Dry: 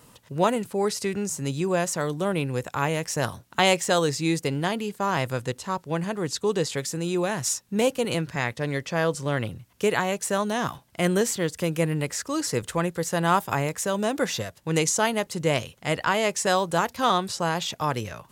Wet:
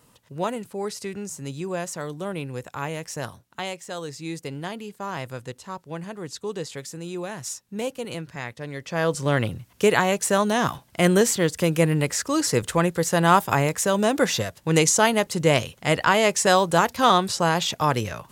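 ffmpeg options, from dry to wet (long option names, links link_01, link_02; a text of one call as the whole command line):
ffmpeg -i in.wav -af "volume=13.5dB,afade=type=out:start_time=3.16:duration=0.61:silence=0.354813,afade=type=in:start_time=3.77:duration=0.78:silence=0.421697,afade=type=in:start_time=8.76:duration=0.53:silence=0.281838" out.wav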